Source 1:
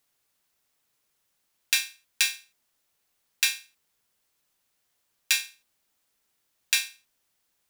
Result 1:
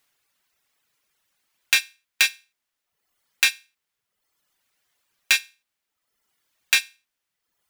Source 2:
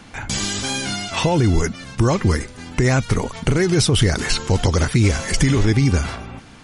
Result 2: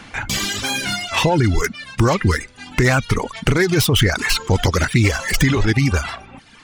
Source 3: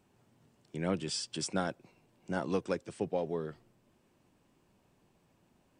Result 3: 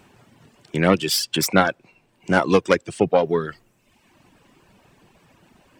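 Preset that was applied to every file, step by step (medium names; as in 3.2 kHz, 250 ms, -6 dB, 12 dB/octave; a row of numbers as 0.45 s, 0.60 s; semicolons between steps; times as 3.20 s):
self-modulated delay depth 0.086 ms; reverb removal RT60 1 s; peaking EQ 2 kHz +6 dB 2.2 oct; peak normalisation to -1.5 dBFS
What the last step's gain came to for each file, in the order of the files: +2.5 dB, +1.0 dB, +15.0 dB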